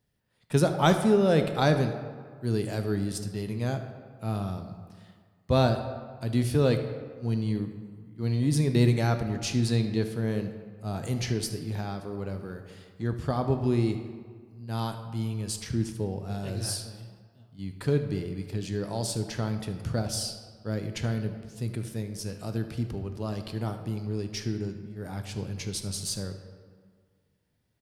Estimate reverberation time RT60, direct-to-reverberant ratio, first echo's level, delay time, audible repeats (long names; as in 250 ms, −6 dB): 1.7 s, 6.5 dB, −16.5 dB, 75 ms, 1